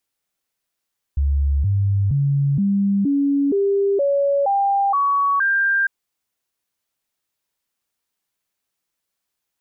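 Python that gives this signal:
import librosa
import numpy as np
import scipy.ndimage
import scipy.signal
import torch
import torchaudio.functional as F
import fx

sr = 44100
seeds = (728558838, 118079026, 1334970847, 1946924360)

y = fx.stepped_sweep(sr, from_hz=70.3, direction='up', per_octave=2, tones=10, dwell_s=0.47, gap_s=0.0, level_db=-15.0)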